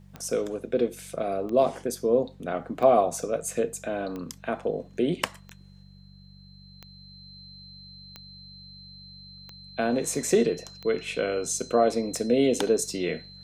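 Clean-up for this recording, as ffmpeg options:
-af "adeclick=t=4,bandreject=f=47.9:t=h:w=4,bandreject=f=95.8:t=h:w=4,bandreject=f=143.7:t=h:w=4,bandreject=f=191.6:t=h:w=4,bandreject=f=4.1k:w=30"

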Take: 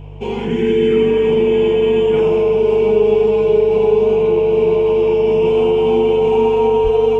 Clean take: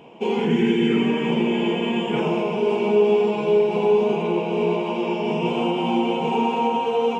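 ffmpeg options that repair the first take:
-filter_complex "[0:a]bandreject=f=49.4:t=h:w=4,bandreject=f=98.8:t=h:w=4,bandreject=f=148.2:t=h:w=4,bandreject=f=440:w=30,asplit=3[a][b][c];[a]afade=t=out:st=6.83:d=0.02[d];[b]highpass=f=140:w=0.5412,highpass=f=140:w=1.3066,afade=t=in:st=6.83:d=0.02,afade=t=out:st=6.95:d=0.02[e];[c]afade=t=in:st=6.95:d=0.02[f];[d][e][f]amix=inputs=3:normalize=0"

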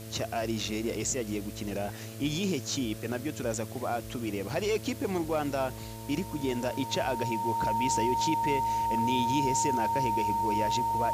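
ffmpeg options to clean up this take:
-af "adeclick=t=4,bandreject=f=110.9:t=h:w=4,bandreject=f=221.8:t=h:w=4,bandreject=f=332.7:t=h:w=4,bandreject=f=443.6:t=h:w=4,bandreject=f=554.5:t=h:w=4,bandreject=f=665.4:t=h:w=4,bandreject=f=920:w=30,afwtdn=0.0035"

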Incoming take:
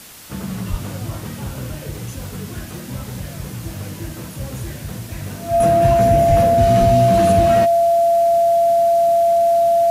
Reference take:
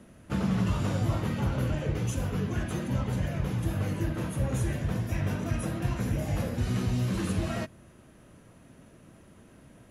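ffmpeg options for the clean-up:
-filter_complex "[0:a]bandreject=f=680:w=30,asplit=3[a][b][c];[a]afade=t=out:st=0.7:d=0.02[d];[b]highpass=f=140:w=0.5412,highpass=f=140:w=1.3066,afade=t=in:st=0.7:d=0.02,afade=t=out:st=0.82:d=0.02[e];[c]afade=t=in:st=0.82:d=0.02[f];[d][e][f]amix=inputs=3:normalize=0,asplit=3[g][h][i];[g]afade=t=out:st=6.28:d=0.02[j];[h]highpass=f=140:w=0.5412,highpass=f=140:w=1.3066,afade=t=in:st=6.28:d=0.02,afade=t=out:st=6.4:d=0.02[k];[i]afade=t=in:st=6.4:d=0.02[l];[j][k][l]amix=inputs=3:normalize=0,asplit=3[m][n][o];[m]afade=t=out:st=6.79:d=0.02[p];[n]highpass=f=140:w=0.5412,highpass=f=140:w=1.3066,afade=t=in:st=6.79:d=0.02,afade=t=out:st=6.91:d=0.02[q];[o]afade=t=in:st=6.91:d=0.02[r];[p][q][r]amix=inputs=3:normalize=0,afwtdn=0.011,asetnsamples=n=441:p=0,asendcmd='5.6 volume volume -10.5dB',volume=0dB"

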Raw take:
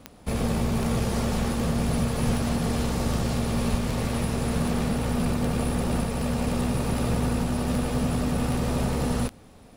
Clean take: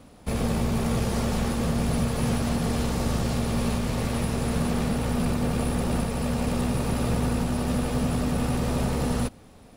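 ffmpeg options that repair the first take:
-filter_complex "[0:a]adeclick=t=4,asplit=3[a][b][c];[a]afade=t=out:st=2.25:d=0.02[d];[b]highpass=f=140:w=0.5412,highpass=f=140:w=1.3066,afade=t=in:st=2.25:d=0.02,afade=t=out:st=2.37:d=0.02[e];[c]afade=t=in:st=2.37:d=0.02[f];[d][e][f]amix=inputs=3:normalize=0,asplit=3[g][h][i];[g]afade=t=out:st=3.7:d=0.02[j];[h]highpass=f=140:w=0.5412,highpass=f=140:w=1.3066,afade=t=in:st=3.7:d=0.02,afade=t=out:st=3.82:d=0.02[k];[i]afade=t=in:st=3.82:d=0.02[l];[j][k][l]amix=inputs=3:normalize=0"

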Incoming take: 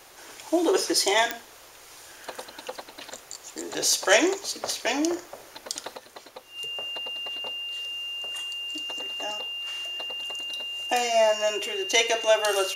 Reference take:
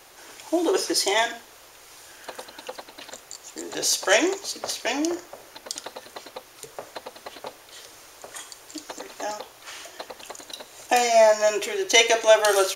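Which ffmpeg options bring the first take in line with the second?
-af "adeclick=t=4,bandreject=f=2.8k:w=30,asetnsamples=n=441:p=0,asendcmd='5.97 volume volume 5dB',volume=0dB"

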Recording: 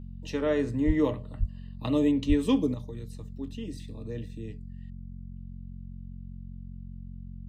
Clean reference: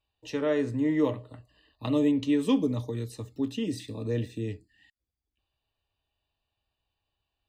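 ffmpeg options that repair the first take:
-filter_complex "[0:a]bandreject=f=45.1:t=h:w=4,bandreject=f=90.2:t=h:w=4,bandreject=f=135.3:t=h:w=4,bandreject=f=180.4:t=h:w=4,bandreject=f=225.5:t=h:w=4,asplit=3[a][b][c];[a]afade=t=out:st=0.86:d=0.02[d];[b]highpass=f=140:w=0.5412,highpass=f=140:w=1.3066,afade=t=in:st=0.86:d=0.02,afade=t=out:st=0.98:d=0.02[e];[c]afade=t=in:st=0.98:d=0.02[f];[d][e][f]amix=inputs=3:normalize=0,asplit=3[g][h][i];[g]afade=t=out:st=1.39:d=0.02[j];[h]highpass=f=140:w=0.5412,highpass=f=140:w=1.3066,afade=t=in:st=1.39:d=0.02,afade=t=out:st=1.51:d=0.02[k];[i]afade=t=in:st=1.51:d=0.02[l];[j][k][l]amix=inputs=3:normalize=0,asplit=3[m][n][o];[m]afade=t=out:st=2.28:d=0.02[p];[n]highpass=f=140:w=0.5412,highpass=f=140:w=1.3066,afade=t=in:st=2.28:d=0.02,afade=t=out:st=2.4:d=0.02[q];[o]afade=t=in:st=2.4:d=0.02[r];[p][q][r]amix=inputs=3:normalize=0,asetnsamples=n=441:p=0,asendcmd='2.74 volume volume 8dB',volume=0dB"

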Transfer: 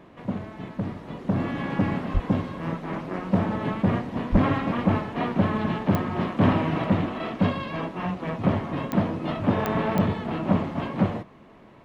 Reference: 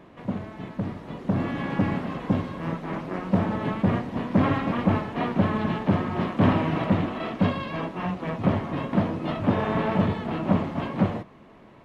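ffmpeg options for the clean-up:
-filter_complex "[0:a]adeclick=t=4,asplit=3[a][b][c];[a]afade=t=out:st=2.13:d=0.02[d];[b]highpass=f=140:w=0.5412,highpass=f=140:w=1.3066,afade=t=in:st=2.13:d=0.02,afade=t=out:st=2.25:d=0.02[e];[c]afade=t=in:st=2.25:d=0.02[f];[d][e][f]amix=inputs=3:normalize=0,asplit=3[g][h][i];[g]afade=t=out:st=4.31:d=0.02[j];[h]highpass=f=140:w=0.5412,highpass=f=140:w=1.3066,afade=t=in:st=4.31:d=0.02,afade=t=out:st=4.43:d=0.02[k];[i]afade=t=in:st=4.43:d=0.02[l];[j][k][l]amix=inputs=3:normalize=0"

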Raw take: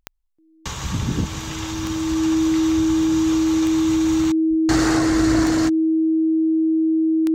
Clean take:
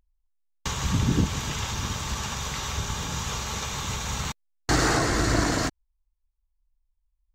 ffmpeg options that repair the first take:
-filter_complex "[0:a]adeclick=t=4,bandreject=f=320:w=30,asplit=3[a][b][c];[a]afade=t=out:st=4.49:d=0.02[d];[b]highpass=f=140:w=0.5412,highpass=f=140:w=1.3066,afade=t=in:st=4.49:d=0.02,afade=t=out:st=4.61:d=0.02[e];[c]afade=t=in:st=4.61:d=0.02[f];[d][e][f]amix=inputs=3:normalize=0"

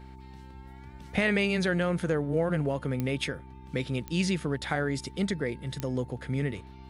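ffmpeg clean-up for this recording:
-af "adeclick=t=4,bandreject=f=65.1:t=h:w=4,bandreject=f=130.2:t=h:w=4,bandreject=f=195.3:t=h:w=4,bandreject=f=260.4:t=h:w=4,bandreject=f=325.5:t=h:w=4,bandreject=f=390.6:t=h:w=4,bandreject=f=890:w=30"

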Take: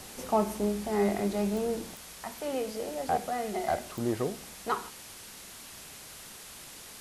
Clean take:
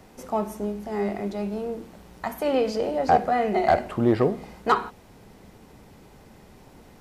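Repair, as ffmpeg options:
-af "adeclick=t=4,afwtdn=0.0056,asetnsamples=n=441:p=0,asendcmd='1.95 volume volume 10dB',volume=0dB"

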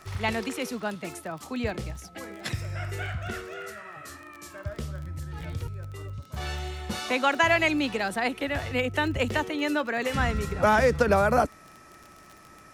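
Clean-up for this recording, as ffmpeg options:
-af "adeclick=t=4,bandreject=f=1.3k:w=30"

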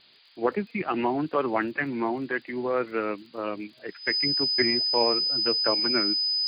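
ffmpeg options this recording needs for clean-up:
-af "adeclick=t=4,bandreject=f=5k:w=30,afftdn=nr=19:nf=-53"

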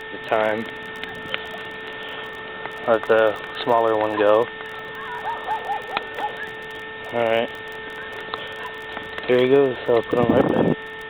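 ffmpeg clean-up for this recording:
-af "adeclick=t=4,bandreject=f=438.4:t=h:w=4,bandreject=f=876.8:t=h:w=4,bandreject=f=1.3152k:t=h:w=4,bandreject=f=1.7536k:t=h:w=4,bandreject=f=2.192k:t=h:w=4,bandreject=f=1.8k:w=30,afwtdn=0.02"

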